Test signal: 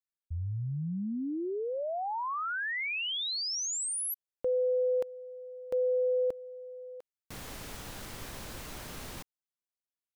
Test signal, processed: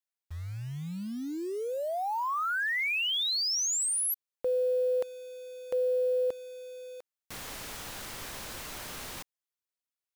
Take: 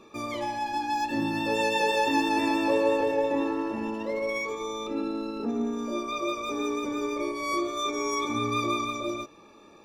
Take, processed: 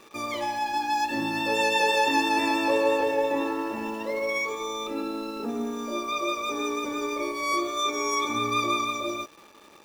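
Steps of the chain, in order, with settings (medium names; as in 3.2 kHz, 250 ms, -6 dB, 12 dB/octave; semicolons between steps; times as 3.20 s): in parallel at -4 dB: word length cut 8-bit, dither none; on the sum: bass shelf 440 Hz -8.5 dB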